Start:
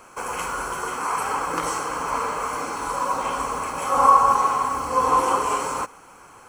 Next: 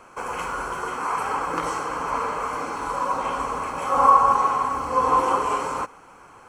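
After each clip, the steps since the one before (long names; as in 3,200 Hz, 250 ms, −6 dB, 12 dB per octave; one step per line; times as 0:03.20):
high-shelf EQ 5,600 Hz −11.5 dB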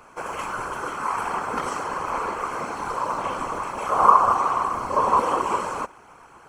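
random phases in short frames
level −1 dB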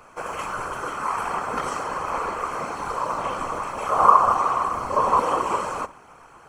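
convolution reverb RT60 0.50 s, pre-delay 7 ms, DRR 15 dB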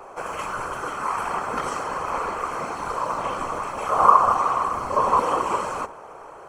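noise in a band 360–1,200 Hz −43 dBFS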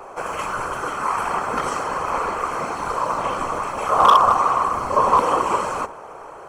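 hard clipping −10 dBFS, distortion −15 dB
level +3.5 dB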